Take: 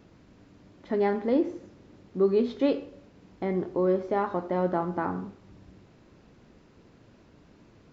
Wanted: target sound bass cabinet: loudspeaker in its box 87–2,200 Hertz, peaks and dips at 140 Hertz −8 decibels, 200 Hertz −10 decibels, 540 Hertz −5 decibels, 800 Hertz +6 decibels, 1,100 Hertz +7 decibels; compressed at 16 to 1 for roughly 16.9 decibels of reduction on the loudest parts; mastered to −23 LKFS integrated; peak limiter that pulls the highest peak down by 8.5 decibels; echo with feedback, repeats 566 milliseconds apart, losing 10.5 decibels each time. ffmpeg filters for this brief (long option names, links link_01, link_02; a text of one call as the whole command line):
ffmpeg -i in.wav -af "acompressor=threshold=-36dB:ratio=16,alimiter=level_in=10.5dB:limit=-24dB:level=0:latency=1,volume=-10.5dB,highpass=frequency=87:width=0.5412,highpass=frequency=87:width=1.3066,equalizer=frequency=140:width_type=q:width=4:gain=-8,equalizer=frequency=200:width_type=q:width=4:gain=-10,equalizer=frequency=540:width_type=q:width=4:gain=-5,equalizer=frequency=800:width_type=q:width=4:gain=6,equalizer=frequency=1100:width_type=q:width=4:gain=7,lowpass=frequency=2200:width=0.5412,lowpass=frequency=2200:width=1.3066,aecho=1:1:566|1132|1698:0.299|0.0896|0.0269,volume=23dB" out.wav